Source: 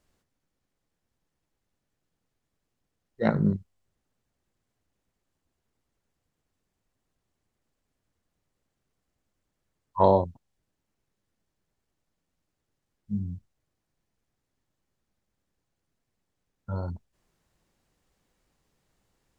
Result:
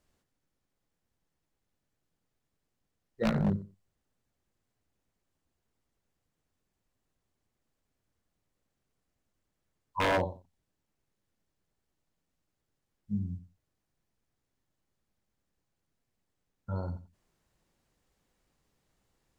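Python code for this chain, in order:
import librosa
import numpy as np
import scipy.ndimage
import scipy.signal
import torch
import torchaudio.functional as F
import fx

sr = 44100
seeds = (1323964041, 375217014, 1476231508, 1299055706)

y = fx.echo_feedback(x, sr, ms=90, feedback_pct=16, wet_db=-14.0)
y = 10.0 ** (-18.5 / 20.0) * (np.abs((y / 10.0 ** (-18.5 / 20.0) + 3.0) % 4.0 - 2.0) - 1.0)
y = y * librosa.db_to_amplitude(-2.5)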